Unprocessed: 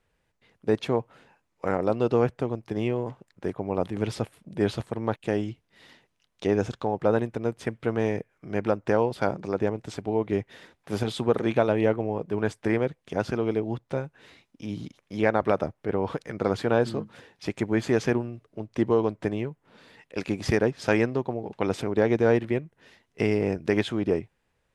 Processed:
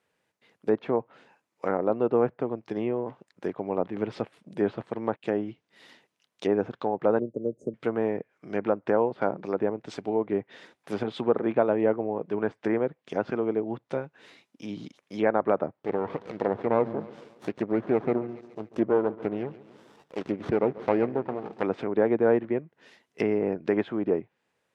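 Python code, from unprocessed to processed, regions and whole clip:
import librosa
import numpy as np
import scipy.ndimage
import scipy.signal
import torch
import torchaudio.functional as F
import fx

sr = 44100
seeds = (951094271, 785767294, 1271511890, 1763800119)

y = fx.chain(x, sr, fx.cheby1_bandstop(low_hz=600.0, high_hz=6500.0, order=5),
    fx.high_shelf(hz=5800.0, db=-8.5),
    fx.band_squash(depth_pct=40), at=(7.19, 7.74))
y = fx.chain(y, sr, fx.low_shelf(hz=74.0, db=8.5),
    fx.echo_feedback(ms=140, feedback_pct=51, wet_db=-18.0),
    fx.running_max(window=17), at=(15.76, 21.63))
y = fx.env_lowpass_down(y, sr, base_hz=1500.0, full_db=-22.5)
y = scipy.signal.sosfilt(scipy.signal.butter(2, 200.0, 'highpass', fs=sr, output='sos'), y)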